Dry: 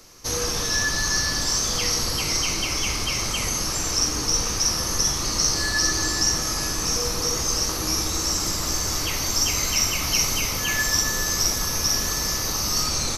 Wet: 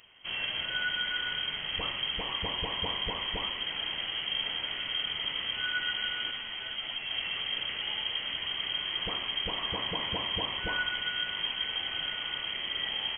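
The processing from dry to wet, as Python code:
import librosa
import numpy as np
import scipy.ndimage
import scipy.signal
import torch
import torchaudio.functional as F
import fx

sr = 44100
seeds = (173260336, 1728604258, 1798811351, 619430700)

y = fx.freq_invert(x, sr, carrier_hz=3200)
y = fx.ensemble(y, sr, at=(6.31, 7.11))
y = y * librosa.db_to_amplitude(-6.5)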